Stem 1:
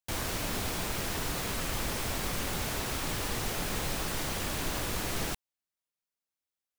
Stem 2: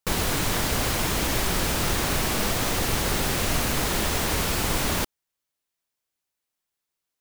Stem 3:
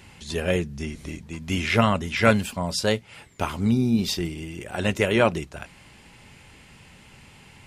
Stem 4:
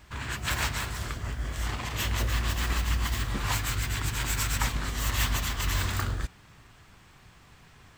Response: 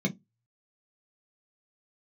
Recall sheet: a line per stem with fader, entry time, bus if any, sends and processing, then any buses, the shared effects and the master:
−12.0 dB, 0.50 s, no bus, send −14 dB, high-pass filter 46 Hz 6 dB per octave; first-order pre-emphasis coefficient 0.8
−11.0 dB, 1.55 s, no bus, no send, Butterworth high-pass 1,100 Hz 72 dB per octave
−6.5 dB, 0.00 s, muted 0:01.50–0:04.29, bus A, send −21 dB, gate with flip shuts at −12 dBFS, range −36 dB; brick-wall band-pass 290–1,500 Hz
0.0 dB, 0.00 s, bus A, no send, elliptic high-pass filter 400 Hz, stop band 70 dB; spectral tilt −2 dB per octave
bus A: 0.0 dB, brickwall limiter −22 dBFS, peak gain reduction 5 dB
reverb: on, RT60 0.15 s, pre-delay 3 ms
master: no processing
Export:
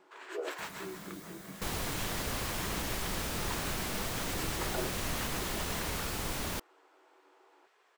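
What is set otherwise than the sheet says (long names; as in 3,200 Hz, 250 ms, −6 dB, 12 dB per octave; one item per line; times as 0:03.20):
stem 2: missing Butterworth high-pass 1,100 Hz 72 dB per octave
stem 4 0.0 dB → −9.0 dB
reverb return +9.0 dB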